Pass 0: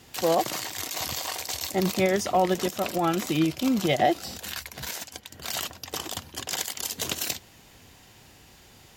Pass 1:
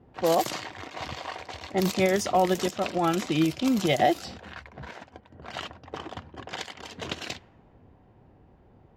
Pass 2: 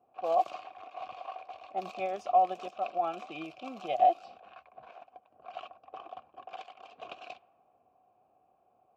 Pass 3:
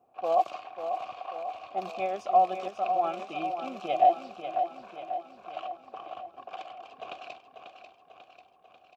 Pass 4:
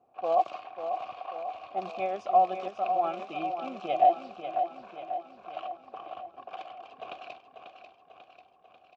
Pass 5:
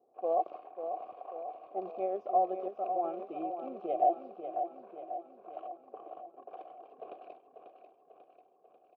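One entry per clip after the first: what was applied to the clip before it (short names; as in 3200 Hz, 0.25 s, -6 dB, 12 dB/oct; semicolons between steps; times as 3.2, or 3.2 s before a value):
low-pass opened by the level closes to 680 Hz, open at -20 dBFS
vowel filter a; gain +1.5 dB
feedback echo 0.542 s, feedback 58%, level -8 dB; gain +2.5 dB
air absorption 88 m
band-pass 420 Hz, Q 2.4; gain +3.5 dB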